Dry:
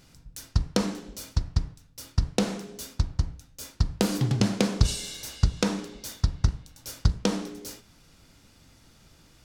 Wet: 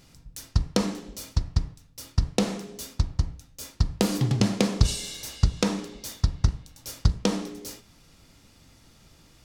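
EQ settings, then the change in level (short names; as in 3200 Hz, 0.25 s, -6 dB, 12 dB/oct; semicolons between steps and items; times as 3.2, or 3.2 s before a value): notch 1500 Hz, Q 13; +1.0 dB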